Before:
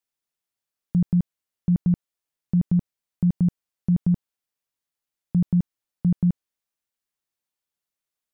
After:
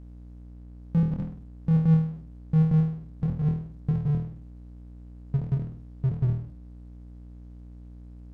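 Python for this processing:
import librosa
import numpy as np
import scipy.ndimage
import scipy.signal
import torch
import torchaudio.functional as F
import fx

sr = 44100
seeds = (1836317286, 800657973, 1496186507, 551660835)

y = fx.pitch_glide(x, sr, semitones=-6.5, runs='starting unshifted')
y = fx.room_flutter(y, sr, wall_m=4.3, rt60_s=0.41)
y = fx.add_hum(y, sr, base_hz=60, snr_db=26)
y = fx.power_curve(y, sr, exponent=0.7)
y = fx.air_absorb(y, sr, metres=56.0)
y = y * 10.0 ** (-5.0 / 20.0)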